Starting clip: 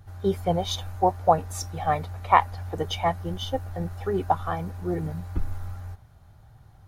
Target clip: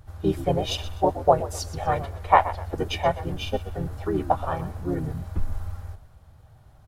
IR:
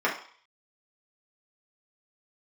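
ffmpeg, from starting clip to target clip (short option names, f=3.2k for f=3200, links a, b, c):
-filter_complex "[0:a]asplit=4[a][b][c][d];[b]adelay=125,afreqshift=-51,volume=-14dB[e];[c]adelay=250,afreqshift=-102,volume=-24.2dB[f];[d]adelay=375,afreqshift=-153,volume=-34.3dB[g];[a][e][f][g]amix=inputs=4:normalize=0,asplit=2[h][i];[i]asetrate=35002,aresample=44100,atempo=1.25992,volume=-2dB[j];[h][j]amix=inputs=2:normalize=0,volume=-1.5dB"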